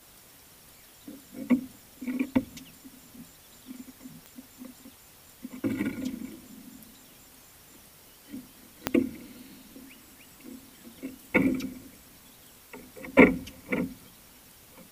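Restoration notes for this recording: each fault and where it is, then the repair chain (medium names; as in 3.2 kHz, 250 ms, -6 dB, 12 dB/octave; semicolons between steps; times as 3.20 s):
4.26 s: pop -28 dBFS
8.87 s: pop -7 dBFS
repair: de-click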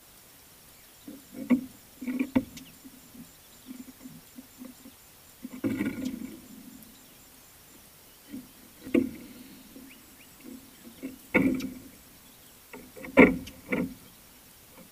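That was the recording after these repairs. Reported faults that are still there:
8.87 s: pop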